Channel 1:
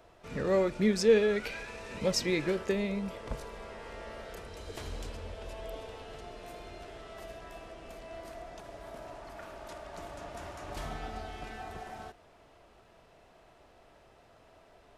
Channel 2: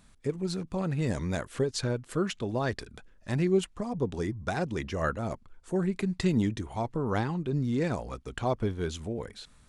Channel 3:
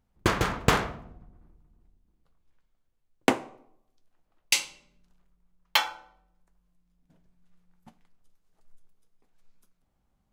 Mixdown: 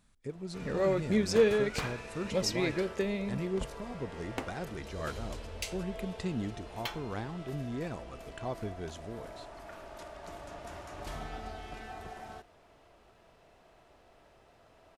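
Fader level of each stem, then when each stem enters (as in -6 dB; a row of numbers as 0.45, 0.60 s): -1.5, -9.0, -15.5 dB; 0.30, 0.00, 1.10 s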